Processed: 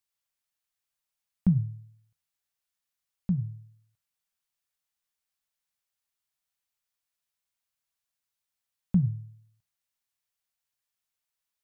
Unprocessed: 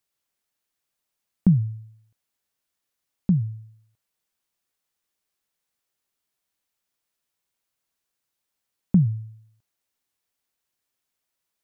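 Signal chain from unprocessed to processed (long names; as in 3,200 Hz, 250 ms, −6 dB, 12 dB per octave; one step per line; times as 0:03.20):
parametric band 330 Hz −11.5 dB 1.4 octaves
hum removal 75.27 Hz, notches 30
expander for the loud parts 1.5 to 1, over −27 dBFS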